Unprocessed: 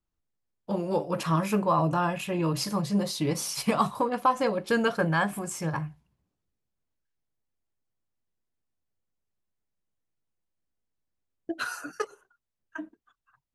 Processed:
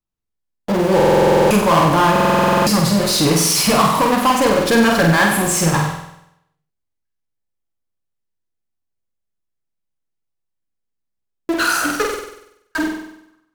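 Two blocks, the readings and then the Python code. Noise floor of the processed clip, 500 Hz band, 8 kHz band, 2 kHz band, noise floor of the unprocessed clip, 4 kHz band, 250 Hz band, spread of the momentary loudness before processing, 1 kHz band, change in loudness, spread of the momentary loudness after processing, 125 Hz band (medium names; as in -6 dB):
-76 dBFS, +13.5 dB, +17.0 dB, +14.0 dB, -84 dBFS, +16.5 dB, +12.0 dB, 14 LU, +12.5 dB, +13.0 dB, 11 LU, +11.0 dB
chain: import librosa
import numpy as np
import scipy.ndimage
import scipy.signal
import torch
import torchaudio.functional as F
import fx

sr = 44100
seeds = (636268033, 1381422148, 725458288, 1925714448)

p1 = fx.leveller(x, sr, passes=2)
p2 = fx.fuzz(p1, sr, gain_db=48.0, gate_db=-53.0)
p3 = p1 + F.gain(torch.from_numpy(p2), -9.0).numpy()
p4 = fx.room_flutter(p3, sr, wall_m=8.2, rt60_s=0.79)
y = fx.buffer_glitch(p4, sr, at_s=(0.95, 2.11), block=2048, repeats=11)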